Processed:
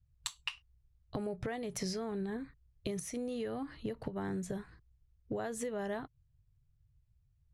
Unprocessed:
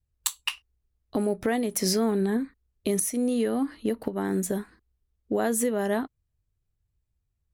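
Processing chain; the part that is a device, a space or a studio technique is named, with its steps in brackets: jukebox (LPF 6200 Hz 12 dB/oct; resonant low shelf 180 Hz +8 dB, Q 3; compressor 5:1, threshold -32 dBFS, peak gain reduction 9.5 dB); gain -3 dB

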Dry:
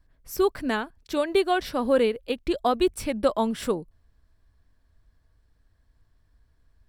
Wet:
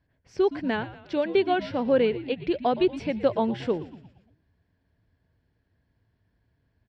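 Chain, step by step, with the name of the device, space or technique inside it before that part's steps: frequency-shifting delay pedal into a guitar cabinet (frequency-shifting echo 0.117 s, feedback 55%, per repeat -95 Hz, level -15 dB; speaker cabinet 100–4300 Hz, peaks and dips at 110 Hz +5 dB, 1200 Hz -10 dB, 3800 Hz -6 dB)

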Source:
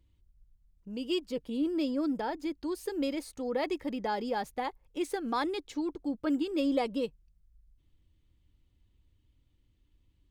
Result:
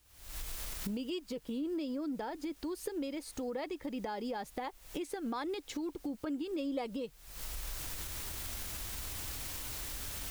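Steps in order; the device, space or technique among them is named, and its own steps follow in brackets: cheap recorder with automatic gain (white noise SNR 29 dB; recorder AGC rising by 74 dB/s); gain -8 dB

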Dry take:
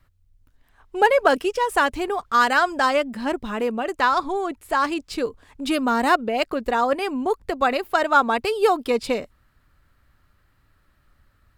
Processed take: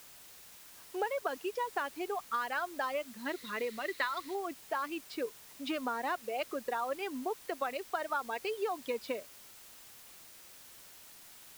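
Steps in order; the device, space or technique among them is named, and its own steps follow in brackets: reverb removal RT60 1.7 s; baby monitor (BPF 320–3800 Hz; compressor, threshold -24 dBFS, peak gain reduction 12.5 dB; white noise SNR 16 dB); 3.25–4.35 thirty-one-band EQ 800 Hz -10 dB, 2000 Hz +10 dB, 4000 Hz +10 dB; gain -7.5 dB

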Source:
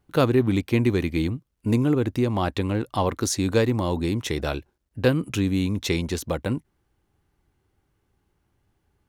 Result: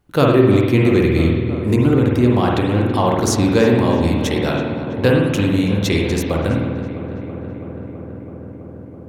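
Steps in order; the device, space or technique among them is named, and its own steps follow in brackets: dub delay into a spring reverb (darkening echo 0.329 s, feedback 84%, low-pass 2700 Hz, level -12 dB; spring tank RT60 1 s, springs 49 ms, chirp 65 ms, DRR -1 dB); gain +4 dB

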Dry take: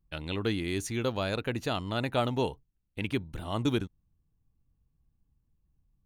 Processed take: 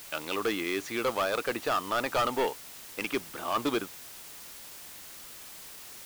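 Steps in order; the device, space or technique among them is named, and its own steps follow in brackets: drive-through speaker (BPF 420–3200 Hz; bell 1200 Hz +9 dB 0.22 oct; hard clip -29 dBFS, distortion -8 dB; white noise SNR 13 dB); gain +6.5 dB

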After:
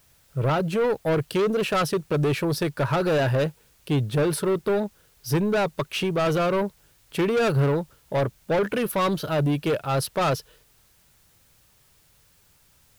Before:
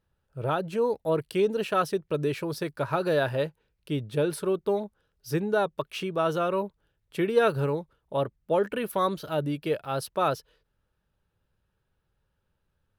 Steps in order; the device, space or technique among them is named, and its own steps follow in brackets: open-reel tape (soft clip -27.5 dBFS, distortion -8 dB; bell 130 Hz +4 dB 0.88 oct; white noise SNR 36 dB); gain +8.5 dB

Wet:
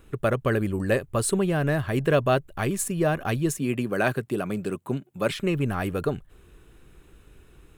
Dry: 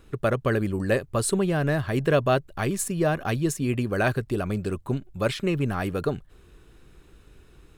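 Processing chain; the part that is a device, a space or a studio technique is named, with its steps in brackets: exciter from parts (in parallel at -5 dB: HPF 2700 Hz 24 dB/oct + soft clip -35.5 dBFS, distortion -5 dB + HPF 4300 Hz 12 dB/oct); 3.58–5.31 on the sum: HPF 130 Hz 24 dB/oct

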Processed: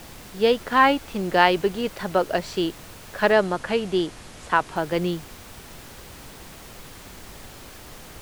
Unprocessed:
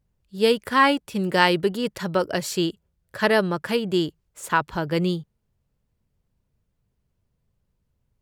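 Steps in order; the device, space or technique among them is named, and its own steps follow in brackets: horn gramophone (BPF 200–3800 Hz; bell 730 Hz +8 dB 0.3 oct; wow and flutter; pink noise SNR 17 dB); 3.32–4.76 steep low-pass 11000 Hz 36 dB/oct

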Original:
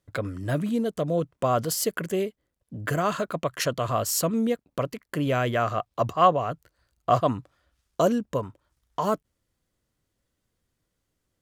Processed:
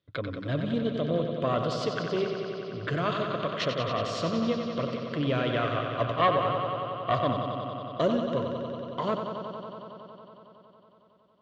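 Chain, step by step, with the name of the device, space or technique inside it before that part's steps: analogue delay pedal into a guitar amplifier (analogue delay 92 ms, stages 4096, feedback 85%, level -7 dB; tube stage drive 10 dB, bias 0.55; speaker cabinet 84–4300 Hz, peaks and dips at 200 Hz -3 dB, 810 Hz -8 dB, 1700 Hz -3 dB, 3500 Hz +8 dB)

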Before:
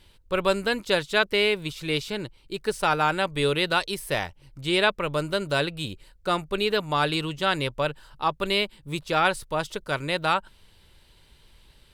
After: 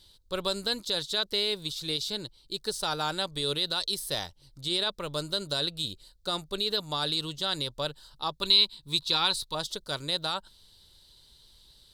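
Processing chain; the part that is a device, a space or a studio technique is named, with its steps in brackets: over-bright horn tweeter (resonant high shelf 3100 Hz +8 dB, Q 3; limiter -11 dBFS, peak gain reduction 7.5 dB); 8.42–9.55 thirty-one-band EQ 630 Hz -11 dB, 1000 Hz +8 dB, 2500 Hz +8 dB, 4000 Hz +9 dB; gain -7 dB

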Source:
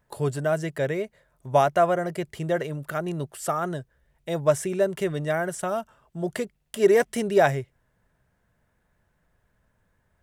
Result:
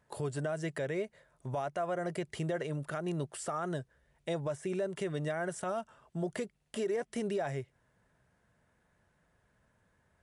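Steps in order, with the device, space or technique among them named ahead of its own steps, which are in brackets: podcast mastering chain (HPF 91 Hz 6 dB/oct; de-esser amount 75%; compressor 2.5:1, threshold -32 dBFS, peak gain reduction 12.5 dB; limiter -25.5 dBFS, peak gain reduction 8 dB; MP3 96 kbps 24000 Hz)

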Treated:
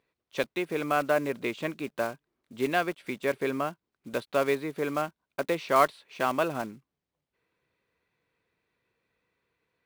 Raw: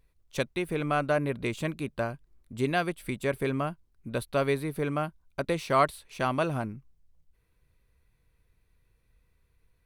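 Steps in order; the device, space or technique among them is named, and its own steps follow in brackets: early digital voice recorder (BPF 260–4000 Hz; block floating point 5-bit); gain +1.5 dB

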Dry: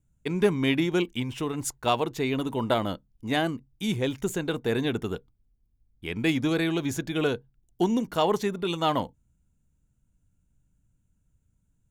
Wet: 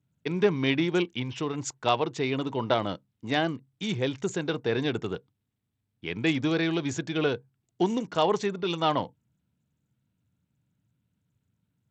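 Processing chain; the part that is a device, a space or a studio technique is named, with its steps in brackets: dynamic EQ 230 Hz, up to -5 dB, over -43 dBFS, Q 3.5; Bluetooth headset (HPF 100 Hz 24 dB/oct; downsampling 16000 Hz; SBC 64 kbps 32000 Hz)

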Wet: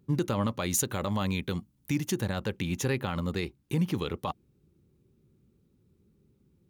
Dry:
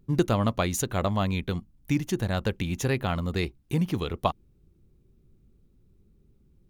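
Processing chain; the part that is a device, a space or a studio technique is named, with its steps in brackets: PA system with an anti-feedback notch (HPF 100 Hz 12 dB/oct; Butterworth band-stop 680 Hz, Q 7.9; limiter -19 dBFS, peak gain reduction 11 dB); 0.59–2.22 high shelf 5000 Hz +5.5 dB

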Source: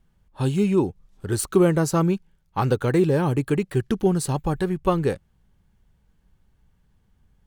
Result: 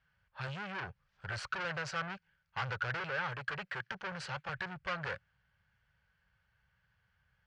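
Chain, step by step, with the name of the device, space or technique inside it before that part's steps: 3–4.49 HPF 160 Hz 24 dB/oct; bell 1700 Hz +3 dB; scooped metal amplifier (tube stage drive 30 dB, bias 0.55; speaker cabinet 110–4300 Hz, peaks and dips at 120 Hz +4 dB, 250 Hz -6 dB, 540 Hz +6 dB, 1500 Hz +8 dB, 3700 Hz -8 dB; passive tone stack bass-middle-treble 10-0-10); gain +5.5 dB

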